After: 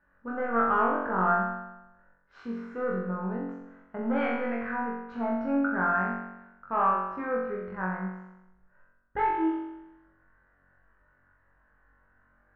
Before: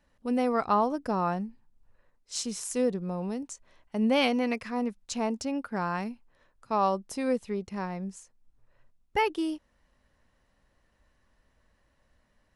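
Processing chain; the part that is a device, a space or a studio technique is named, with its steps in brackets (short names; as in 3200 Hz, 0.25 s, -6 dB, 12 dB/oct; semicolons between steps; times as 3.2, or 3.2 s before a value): overdriven synthesiser ladder filter (soft clip -22 dBFS, distortion -14 dB; ladder low-pass 1600 Hz, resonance 75%); flutter echo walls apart 3.7 m, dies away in 0.94 s; gain +7 dB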